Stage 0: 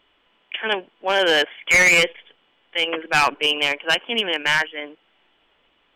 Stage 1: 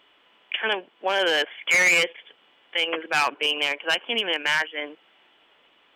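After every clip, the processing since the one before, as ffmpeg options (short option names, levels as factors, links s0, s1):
-af "highpass=f=290:p=1,alimiter=limit=0.133:level=0:latency=1:release=414,volume=1.58"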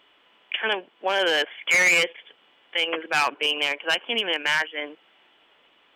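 -af anull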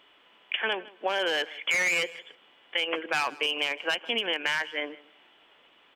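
-af "acompressor=threshold=0.0631:ratio=6,aecho=1:1:158|316:0.0944|0.017"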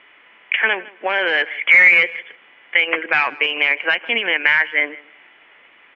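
-af "lowpass=f=2100:t=q:w=3.9,volume=1.88"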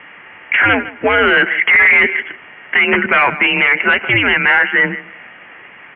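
-af "apsyclip=7.08,highpass=f=180:t=q:w=0.5412,highpass=f=180:t=q:w=1.307,lowpass=f=3000:t=q:w=0.5176,lowpass=f=3000:t=q:w=0.7071,lowpass=f=3000:t=q:w=1.932,afreqshift=-120,volume=0.531"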